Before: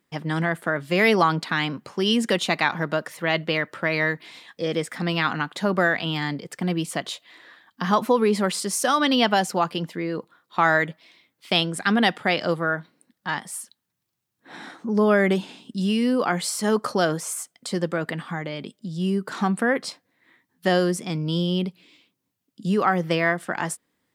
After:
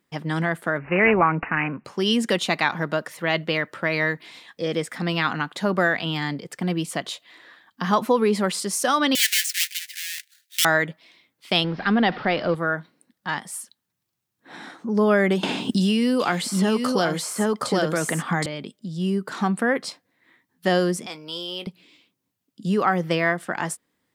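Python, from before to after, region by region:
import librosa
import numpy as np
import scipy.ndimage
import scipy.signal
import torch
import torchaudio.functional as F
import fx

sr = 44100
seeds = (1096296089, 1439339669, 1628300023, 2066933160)

y = fx.chain(x, sr, fx.high_shelf(hz=5900.0, db=10.5),
    fx.resample_bad(factor=8, down='none', up='filtered'), at=(0.78, 1.85))
y = fx.chain(y, sr, fx.halfwave_hold(),
    fx.steep_highpass(hz=1700.0, slope=72),
    fx.high_shelf(hz=5200.0, db=5.0), at=(9.15, 10.65))
y = fx.chain(y, sr, fx.zero_step(step_db=-30.0),
    fx.steep_lowpass(hz=5200.0, slope=72),
    fx.high_shelf(hz=2700.0, db=-9.0), at=(11.64, 12.55))
y = fx.chain(y, sr, fx.echo_single(ms=768, db=-3.5),
    fx.band_squash(depth_pct=100), at=(15.43, 18.46))
y = fx.chain(y, sr, fx.highpass(hz=600.0, slope=12),
    fx.high_shelf(hz=9400.0, db=3.5),
    fx.doubler(ms=20.0, db=-12.0), at=(21.06, 21.67))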